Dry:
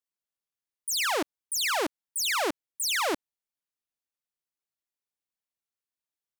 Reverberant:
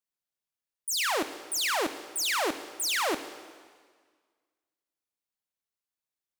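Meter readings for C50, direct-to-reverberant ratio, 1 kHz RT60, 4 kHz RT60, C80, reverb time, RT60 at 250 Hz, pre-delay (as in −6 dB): 11.5 dB, 10.0 dB, 1.7 s, 1.6 s, 12.5 dB, 1.7 s, 1.7 s, 6 ms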